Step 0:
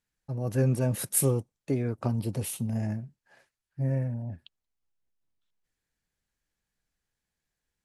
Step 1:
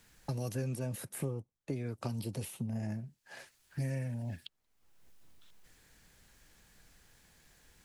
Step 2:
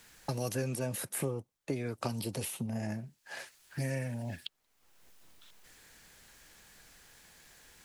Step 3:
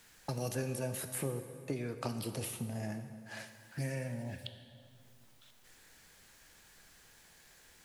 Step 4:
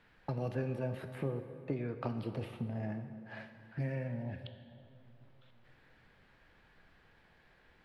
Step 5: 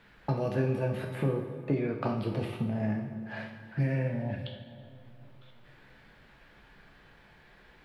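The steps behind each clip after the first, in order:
three bands compressed up and down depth 100%; trim -8.5 dB
bass shelf 260 Hz -9.5 dB; trim +7 dB
plate-style reverb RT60 2.4 s, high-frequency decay 0.7×, DRR 7.5 dB; trim -3 dB
distance through air 420 m; feedback echo behind a low-pass 474 ms, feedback 52%, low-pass 1.2 kHz, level -21.5 dB; trim +1.5 dB
plate-style reverb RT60 0.54 s, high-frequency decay 1×, DRR 3 dB; trim +6 dB

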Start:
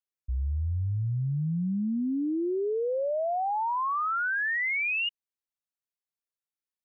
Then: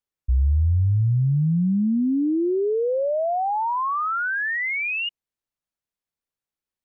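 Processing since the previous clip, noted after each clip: tilt EQ -1.5 dB/octave; trim +4.5 dB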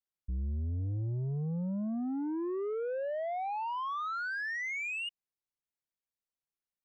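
saturation -22.5 dBFS, distortion -13 dB; trim -9 dB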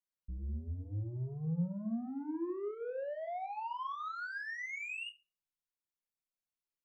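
simulated room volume 220 m³, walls furnished, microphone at 0.95 m; trim -6.5 dB

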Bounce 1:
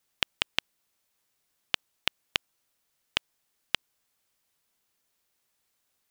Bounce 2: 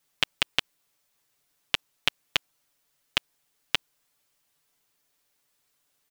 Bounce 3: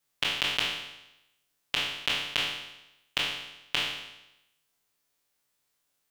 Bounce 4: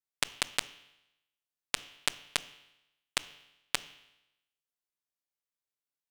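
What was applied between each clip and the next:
comb 6.9 ms; trim +1.5 dB
spectral sustain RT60 0.91 s; trim -6 dB
modulation noise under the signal 20 dB; Chebyshev shaper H 3 -8 dB, 4 -28 dB, 5 -33 dB, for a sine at -6.5 dBFS; trim +2.5 dB

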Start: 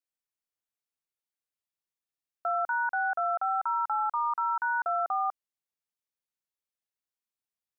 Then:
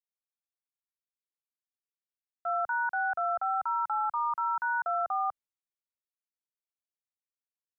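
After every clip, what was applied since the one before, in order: three bands expanded up and down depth 70%; trim -1 dB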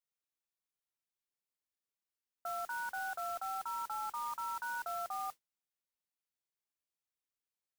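peak limiter -32 dBFS, peak gain reduction 9 dB; modulation noise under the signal 13 dB; trim -1 dB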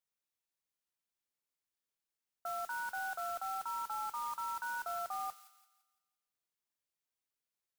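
feedback echo behind a high-pass 170 ms, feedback 40%, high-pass 2.2 kHz, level -10 dB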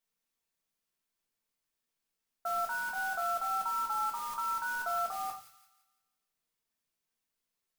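simulated room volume 230 m³, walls furnished, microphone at 1.6 m; trim +2.5 dB

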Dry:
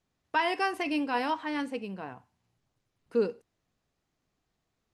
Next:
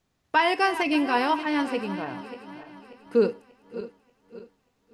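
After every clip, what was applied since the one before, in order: backward echo that repeats 293 ms, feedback 62%, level -12.5 dB; trim +6 dB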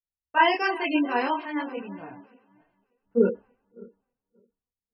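chorus voices 6, 1 Hz, delay 28 ms, depth 3 ms; spectral gate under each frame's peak -25 dB strong; three bands expanded up and down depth 100%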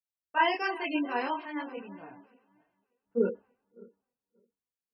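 high-pass 160 Hz 6 dB/octave; trim -5.5 dB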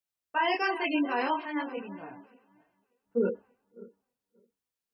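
peak limiter -21 dBFS, peak gain reduction 8.5 dB; trim +3.5 dB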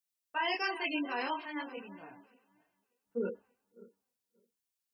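treble shelf 2.5 kHz +11 dB; trim -8 dB

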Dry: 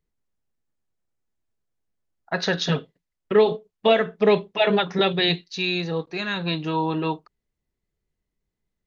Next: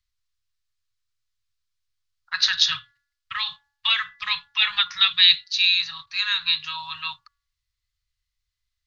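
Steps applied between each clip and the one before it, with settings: Chebyshev band-stop 110–1100 Hz, order 4; peaking EQ 4.4 kHz +11.5 dB 1.3 oct; de-hum 283.8 Hz, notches 7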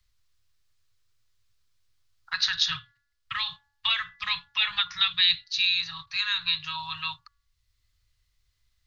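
bass shelf 480 Hz +10.5 dB; three bands compressed up and down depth 40%; trim -5 dB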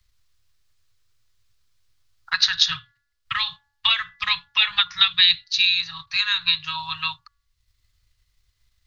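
transient shaper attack +3 dB, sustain -3 dB; trim +4.5 dB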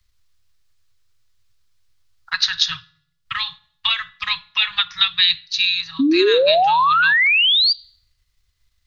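painted sound rise, 5.99–7.73 s, 260–4800 Hz -15 dBFS; on a send at -19.5 dB: reverberation RT60 0.70 s, pre-delay 4 ms

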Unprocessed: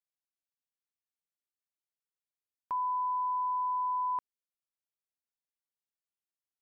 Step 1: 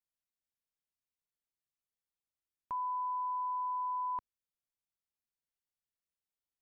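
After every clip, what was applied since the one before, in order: bass shelf 170 Hz +11 dB; trim -4.5 dB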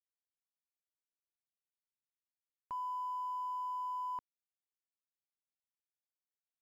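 crossover distortion -60 dBFS; trim -3 dB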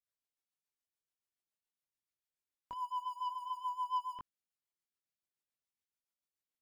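chorus voices 2, 0.46 Hz, delay 21 ms, depth 2.7 ms; waveshaping leveller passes 1; rotary cabinet horn 7 Hz; trim +6 dB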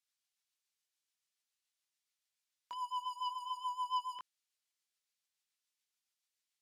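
band-pass filter 4.7 kHz, Q 0.61; trim +9 dB

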